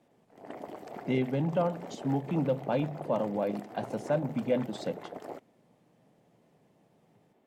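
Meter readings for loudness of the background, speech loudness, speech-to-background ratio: -44.0 LUFS, -32.0 LUFS, 12.0 dB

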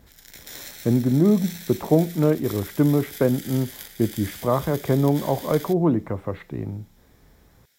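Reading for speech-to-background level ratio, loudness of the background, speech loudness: 15.5 dB, -38.5 LUFS, -23.0 LUFS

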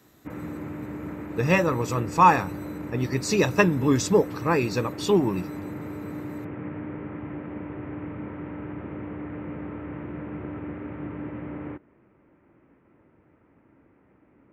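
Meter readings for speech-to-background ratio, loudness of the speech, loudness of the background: 13.0 dB, -23.0 LUFS, -36.0 LUFS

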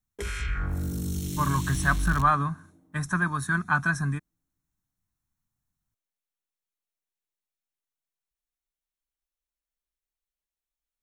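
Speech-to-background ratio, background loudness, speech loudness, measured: 5.5 dB, -32.0 LUFS, -26.5 LUFS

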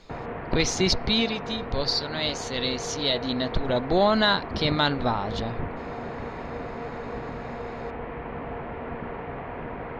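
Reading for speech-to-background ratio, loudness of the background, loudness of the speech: 9.5 dB, -35.0 LUFS, -25.5 LUFS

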